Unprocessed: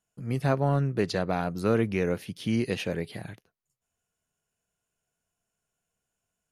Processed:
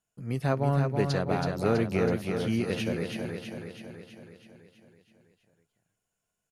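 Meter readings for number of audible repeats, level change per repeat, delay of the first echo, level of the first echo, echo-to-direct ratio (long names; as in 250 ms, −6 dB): 7, −4.5 dB, 326 ms, −5.0 dB, −3.0 dB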